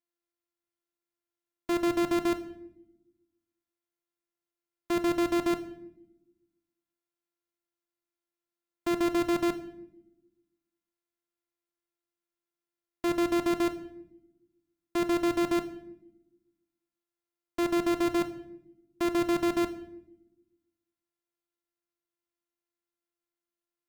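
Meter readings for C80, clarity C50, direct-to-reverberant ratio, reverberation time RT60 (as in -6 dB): 16.5 dB, 14.0 dB, 10.0 dB, 0.80 s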